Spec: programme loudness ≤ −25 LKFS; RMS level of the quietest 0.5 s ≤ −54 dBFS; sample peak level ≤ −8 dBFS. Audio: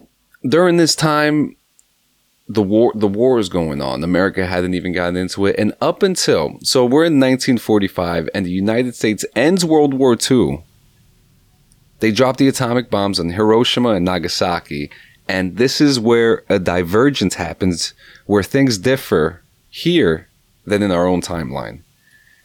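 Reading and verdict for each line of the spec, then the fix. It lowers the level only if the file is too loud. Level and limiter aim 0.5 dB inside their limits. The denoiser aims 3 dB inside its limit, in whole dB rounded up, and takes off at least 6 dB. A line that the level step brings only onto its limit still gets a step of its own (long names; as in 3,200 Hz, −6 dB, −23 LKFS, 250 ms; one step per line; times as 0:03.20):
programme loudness −16.0 LKFS: out of spec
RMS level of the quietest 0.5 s −61 dBFS: in spec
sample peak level −3.0 dBFS: out of spec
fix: level −9.5 dB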